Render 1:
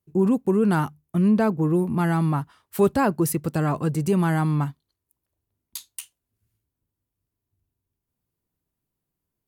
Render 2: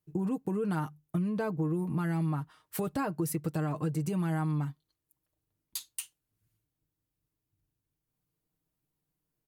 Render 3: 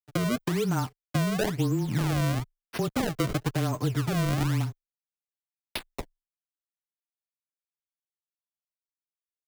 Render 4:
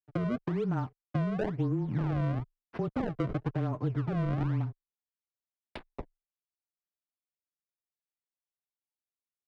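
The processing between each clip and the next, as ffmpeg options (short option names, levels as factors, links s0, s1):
-af "alimiter=limit=0.141:level=0:latency=1:release=364,aecho=1:1:6.5:0.57,acompressor=threshold=0.0501:ratio=3,volume=0.708"
-af "acrusher=samples=29:mix=1:aa=0.000001:lfo=1:lforange=46.4:lforate=1,aeval=exprs='sgn(val(0))*max(abs(val(0))-0.00316,0)':c=same,afreqshift=-19,volume=1.78"
-af "adynamicsmooth=sensitivity=0.5:basefreq=1400,volume=0.668"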